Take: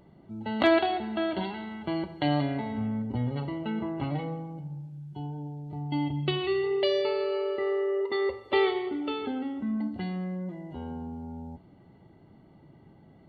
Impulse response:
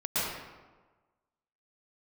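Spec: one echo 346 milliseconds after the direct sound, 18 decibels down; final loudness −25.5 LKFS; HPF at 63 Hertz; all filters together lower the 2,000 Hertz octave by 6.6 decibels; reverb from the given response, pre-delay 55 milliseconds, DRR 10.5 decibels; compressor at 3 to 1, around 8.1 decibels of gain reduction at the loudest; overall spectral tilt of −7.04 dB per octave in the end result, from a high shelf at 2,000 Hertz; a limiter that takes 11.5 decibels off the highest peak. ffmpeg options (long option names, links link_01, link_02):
-filter_complex "[0:a]highpass=63,highshelf=frequency=2000:gain=-5,equalizer=frequency=2000:width_type=o:gain=-5,acompressor=threshold=-29dB:ratio=3,alimiter=level_in=3.5dB:limit=-24dB:level=0:latency=1,volume=-3.5dB,aecho=1:1:346:0.126,asplit=2[link_01][link_02];[1:a]atrim=start_sample=2205,adelay=55[link_03];[link_02][link_03]afir=irnorm=-1:irlink=0,volume=-20dB[link_04];[link_01][link_04]amix=inputs=2:normalize=0,volume=10dB"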